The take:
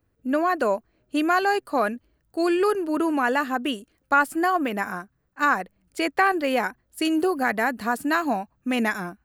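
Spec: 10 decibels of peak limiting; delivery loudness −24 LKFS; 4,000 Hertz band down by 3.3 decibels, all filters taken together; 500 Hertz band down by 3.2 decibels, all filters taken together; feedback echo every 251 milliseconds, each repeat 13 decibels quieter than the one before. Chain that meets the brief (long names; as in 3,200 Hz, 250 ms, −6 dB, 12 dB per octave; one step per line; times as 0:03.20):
parametric band 500 Hz −4.5 dB
parametric band 4,000 Hz −5 dB
brickwall limiter −18.5 dBFS
repeating echo 251 ms, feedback 22%, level −13 dB
level +4.5 dB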